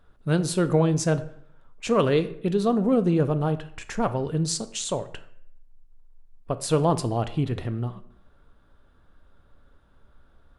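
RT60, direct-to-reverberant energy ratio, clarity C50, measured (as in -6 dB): 0.65 s, 10.5 dB, 15.0 dB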